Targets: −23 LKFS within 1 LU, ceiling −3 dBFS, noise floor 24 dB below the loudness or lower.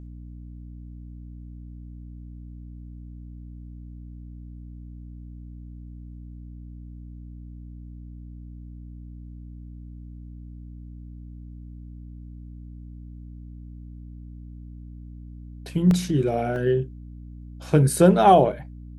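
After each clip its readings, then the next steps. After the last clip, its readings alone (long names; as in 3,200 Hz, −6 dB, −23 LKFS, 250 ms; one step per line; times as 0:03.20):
number of dropouts 2; longest dropout 1.3 ms; mains hum 60 Hz; hum harmonics up to 300 Hz; level of the hum −37 dBFS; integrated loudness −20.5 LKFS; sample peak −4.0 dBFS; target loudness −23.0 LKFS
→ repair the gap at 0:15.91/0:16.56, 1.3 ms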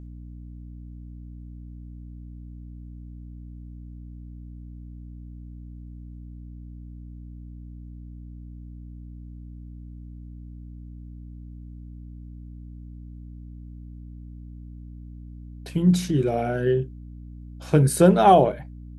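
number of dropouts 0; mains hum 60 Hz; hum harmonics up to 300 Hz; level of the hum −37 dBFS
→ hum removal 60 Hz, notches 5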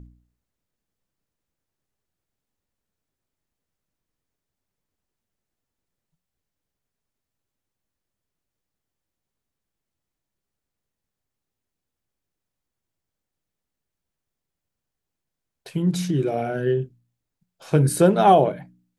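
mains hum none found; integrated loudness −20.5 LKFS; sample peak −4.0 dBFS; target loudness −23.0 LKFS
→ level −2.5 dB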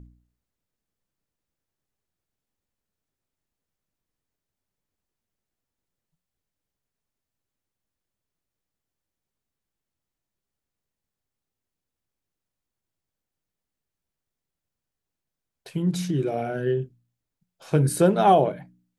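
integrated loudness −23.0 LKFS; sample peak −6.5 dBFS; background noise floor −87 dBFS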